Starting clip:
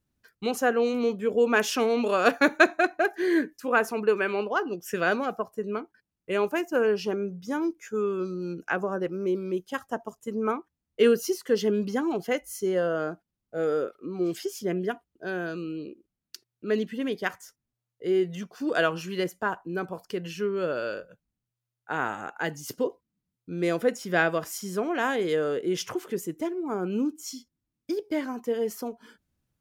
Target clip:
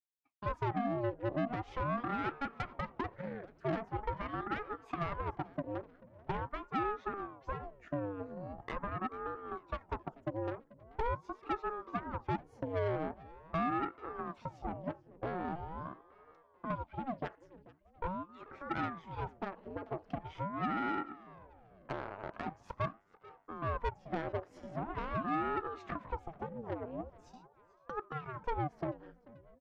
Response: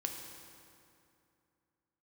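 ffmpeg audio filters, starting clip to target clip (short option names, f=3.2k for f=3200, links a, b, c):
-filter_complex "[0:a]lowpass=1.8k,agate=range=-33dB:threshold=-45dB:ratio=3:detection=peak,acompressor=threshold=-38dB:ratio=10,highpass=f=500:t=q:w=4.9,aeval=exprs='(tanh(44.7*val(0)+0.8)-tanh(0.8))/44.7':c=same,asplit=2[a][b];[b]asplit=4[c][d][e][f];[c]adelay=437,afreqshift=-69,volume=-20dB[g];[d]adelay=874,afreqshift=-138,volume=-25.8dB[h];[e]adelay=1311,afreqshift=-207,volume=-31.7dB[i];[f]adelay=1748,afreqshift=-276,volume=-37.5dB[j];[g][h][i][j]amix=inputs=4:normalize=0[k];[a][k]amix=inputs=2:normalize=0,aeval=exprs='val(0)*sin(2*PI*470*n/s+470*0.8/0.43*sin(2*PI*0.43*n/s))':c=same,volume=4.5dB"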